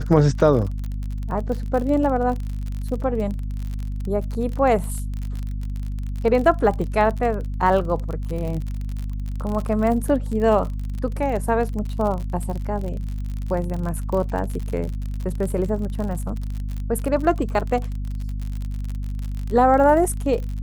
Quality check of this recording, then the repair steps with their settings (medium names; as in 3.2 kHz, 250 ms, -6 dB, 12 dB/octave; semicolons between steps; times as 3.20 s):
crackle 46 per s -27 dBFS
hum 50 Hz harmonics 5 -27 dBFS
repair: de-click; de-hum 50 Hz, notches 5